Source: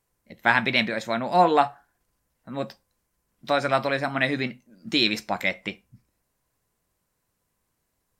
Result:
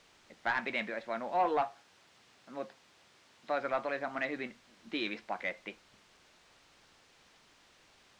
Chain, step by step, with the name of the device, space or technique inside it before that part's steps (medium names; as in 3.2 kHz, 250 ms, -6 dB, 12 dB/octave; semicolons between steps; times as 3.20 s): tape answering machine (band-pass 310–2900 Hz; saturation -13 dBFS, distortion -15 dB; wow and flutter; white noise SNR 18 dB); 1.62–3.59 s: high-pass 89 Hz; distance through air 130 m; trim -8 dB